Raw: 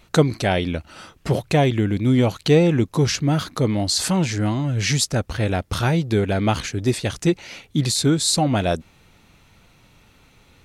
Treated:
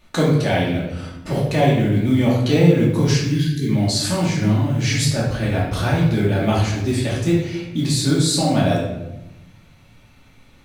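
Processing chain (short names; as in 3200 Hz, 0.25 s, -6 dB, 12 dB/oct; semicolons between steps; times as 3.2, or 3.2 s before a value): spectral delete 3.23–3.69, 440–1500 Hz; modulation noise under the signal 33 dB; shoebox room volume 340 m³, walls mixed, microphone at 2.5 m; gain -6.5 dB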